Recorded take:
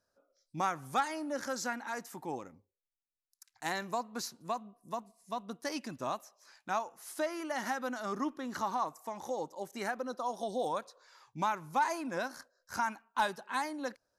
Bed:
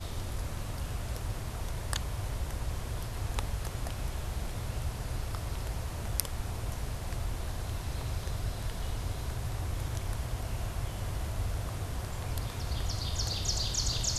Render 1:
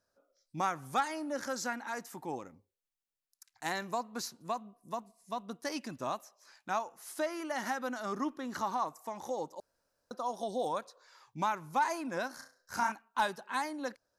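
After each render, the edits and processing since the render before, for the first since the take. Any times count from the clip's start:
0:09.60–0:10.11: fill with room tone
0:12.35–0:12.92: flutter between parallel walls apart 5.8 metres, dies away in 0.34 s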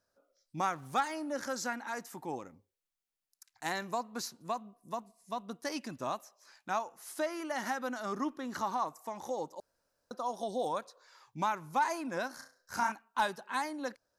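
0:00.72–0:01.13: slack as between gear wheels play −53.5 dBFS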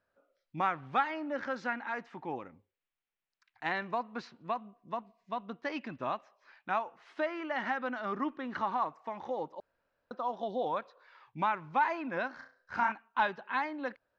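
low-pass filter 2,800 Hz 24 dB per octave
high-shelf EQ 2,100 Hz +9 dB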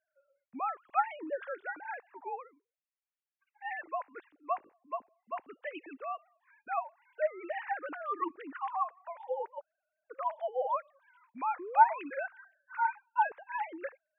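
three sine waves on the formant tracks
0:11.59–0:11.99: sound drawn into the spectrogram rise 330–1,100 Hz −41 dBFS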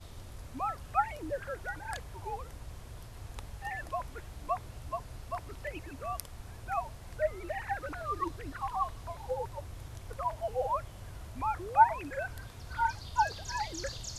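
mix in bed −10.5 dB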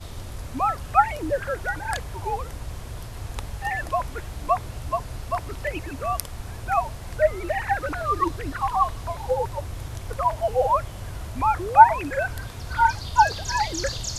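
level +11 dB
brickwall limiter −1 dBFS, peak gain reduction 1 dB

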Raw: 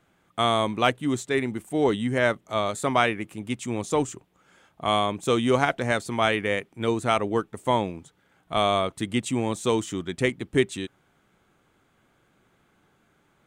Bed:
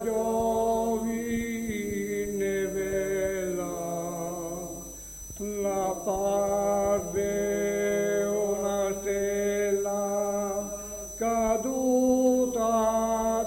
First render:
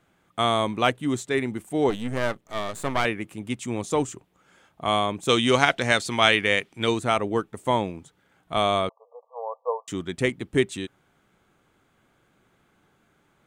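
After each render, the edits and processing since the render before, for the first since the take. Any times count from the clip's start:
0:01.90–0:03.05: gain on one half-wave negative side −12 dB
0:05.29–0:06.99: parametric band 4,100 Hz +10 dB 2.5 octaves
0:08.89–0:09.88: linear-phase brick-wall band-pass 450–1,200 Hz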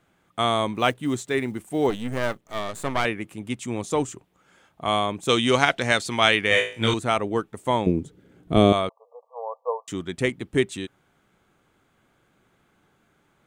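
0:00.75–0:02.61: one scale factor per block 7 bits
0:06.49–0:06.94: flutter between parallel walls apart 3.1 metres, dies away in 0.39 s
0:07.86–0:08.73: low shelf with overshoot 570 Hz +13 dB, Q 1.5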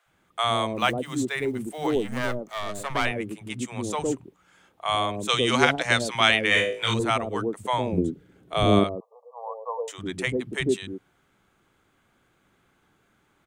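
three-band delay without the direct sound highs, lows, mids 60/110 ms, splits 170/570 Hz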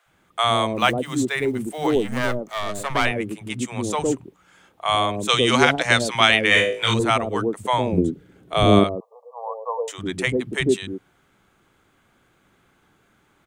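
level +4.5 dB
brickwall limiter −1 dBFS, peak gain reduction 2.5 dB

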